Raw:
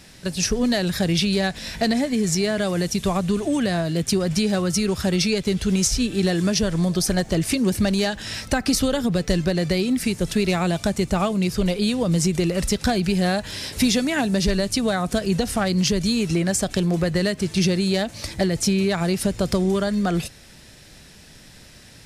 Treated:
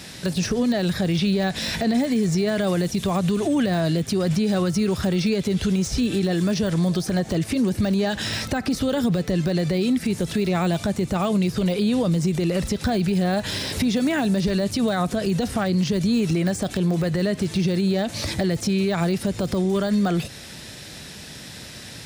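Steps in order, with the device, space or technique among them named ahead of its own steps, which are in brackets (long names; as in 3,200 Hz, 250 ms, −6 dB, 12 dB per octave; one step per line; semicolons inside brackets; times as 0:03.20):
broadcast voice chain (high-pass filter 78 Hz 12 dB per octave; de-essing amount 85%; downward compressor 4 to 1, threshold −25 dBFS, peak gain reduction 8.5 dB; parametric band 3,700 Hz +3 dB 0.35 octaves; brickwall limiter −22 dBFS, peak gain reduction 6.5 dB)
level +8 dB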